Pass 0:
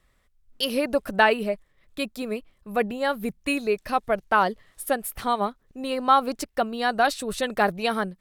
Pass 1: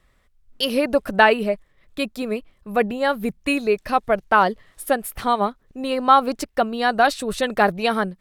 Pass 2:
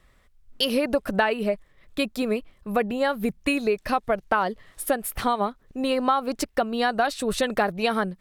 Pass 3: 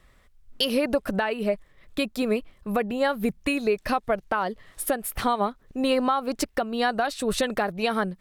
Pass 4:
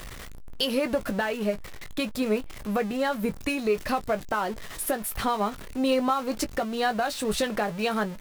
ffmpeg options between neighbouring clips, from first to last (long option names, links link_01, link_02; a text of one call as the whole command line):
ffmpeg -i in.wav -af "highshelf=frequency=5300:gain=-4.5,volume=4.5dB" out.wav
ffmpeg -i in.wav -af "acompressor=threshold=-22dB:ratio=4,volume=2dB" out.wav
ffmpeg -i in.wav -af "alimiter=limit=-13.5dB:level=0:latency=1:release=430,volume=1.5dB" out.wav
ffmpeg -i in.wav -filter_complex "[0:a]aeval=exprs='val(0)+0.5*0.0282*sgn(val(0))':channel_layout=same,asplit=2[link_01][link_02];[link_02]adelay=19,volume=-10dB[link_03];[link_01][link_03]amix=inputs=2:normalize=0,volume=-3.5dB" out.wav